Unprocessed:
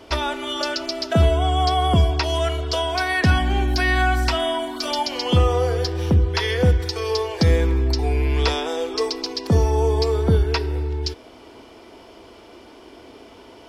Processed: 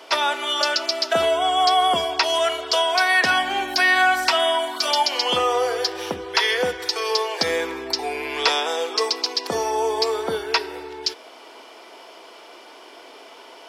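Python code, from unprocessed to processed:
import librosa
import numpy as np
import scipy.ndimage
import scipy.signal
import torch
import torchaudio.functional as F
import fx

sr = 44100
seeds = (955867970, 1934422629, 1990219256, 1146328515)

y = scipy.signal.sosfilt(scipy.signal.butter(2, 620.0, 'highpass', fs=sr, output='sos'), x)
y = y * 10.0 ** (5.0 / 20.0)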